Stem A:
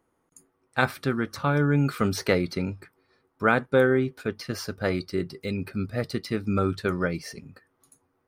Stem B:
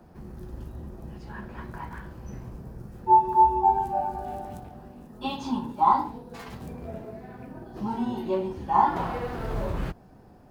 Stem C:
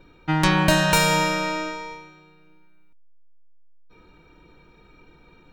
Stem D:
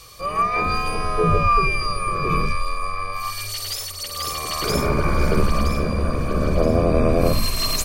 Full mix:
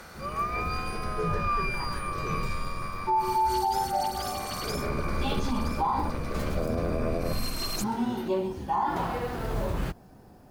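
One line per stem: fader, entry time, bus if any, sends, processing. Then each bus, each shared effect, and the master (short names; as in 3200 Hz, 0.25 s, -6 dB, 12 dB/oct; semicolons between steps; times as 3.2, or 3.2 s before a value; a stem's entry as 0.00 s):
-18.5 dB, 0.00 s, bus A, no send, per-bin compression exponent 0.2; HPF 750 Hz
0.0 dB, 0.00 s, no bus, no send, high shelf 4600 Hz +8.5 dB
-19.5 dB, 1.50 s, bus A, no send, dry
-10.0 dB, 0.00 s, no bus, no send, dry
bus A: 0.0 dB, compressor 2.5:1, threshold -46 dBFS, peak gain reduction 10 dB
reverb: off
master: limiter -18.5 dBFS, peak gain reduction 10.5 dB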